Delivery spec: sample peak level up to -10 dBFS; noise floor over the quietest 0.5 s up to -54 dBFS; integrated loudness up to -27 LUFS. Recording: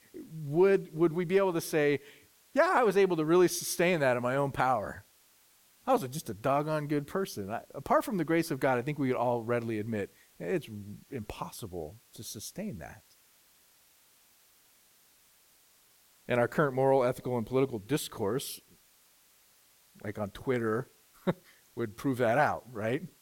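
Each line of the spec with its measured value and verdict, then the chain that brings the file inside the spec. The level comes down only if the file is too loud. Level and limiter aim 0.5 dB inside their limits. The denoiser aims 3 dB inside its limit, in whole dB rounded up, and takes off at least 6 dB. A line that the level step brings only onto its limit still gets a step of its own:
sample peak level -12.0 dBFS: OK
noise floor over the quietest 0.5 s -64 dBFS: OK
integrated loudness -30.5 LUFS: OK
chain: none

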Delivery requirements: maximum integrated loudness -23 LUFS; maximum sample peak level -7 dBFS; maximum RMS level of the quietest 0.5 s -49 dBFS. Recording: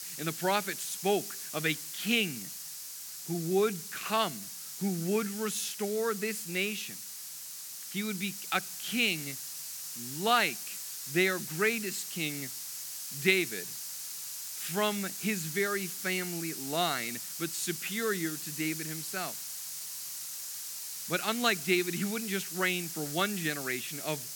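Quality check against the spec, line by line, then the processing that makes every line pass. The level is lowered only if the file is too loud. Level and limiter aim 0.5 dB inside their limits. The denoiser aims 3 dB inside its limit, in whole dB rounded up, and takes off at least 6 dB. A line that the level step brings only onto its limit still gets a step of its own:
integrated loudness -32.0 LUFS: OK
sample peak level -9.0 dBFS: OK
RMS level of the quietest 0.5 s -43 dBFS: fail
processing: denoiser 9 dB, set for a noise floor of -43 dBFS

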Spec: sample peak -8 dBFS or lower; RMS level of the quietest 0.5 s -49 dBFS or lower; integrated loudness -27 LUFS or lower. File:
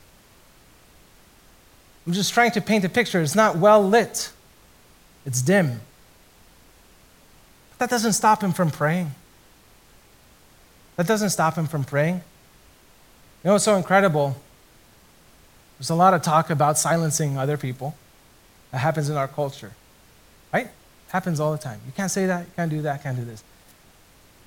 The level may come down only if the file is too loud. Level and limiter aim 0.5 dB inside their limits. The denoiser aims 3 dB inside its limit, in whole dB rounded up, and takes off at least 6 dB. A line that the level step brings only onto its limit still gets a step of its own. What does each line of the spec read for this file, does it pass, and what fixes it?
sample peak -4.5 dBFS: fail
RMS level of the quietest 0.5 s -53 dBFS: OK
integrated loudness -22.0 LUFS: fail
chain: gain -5.5 dB

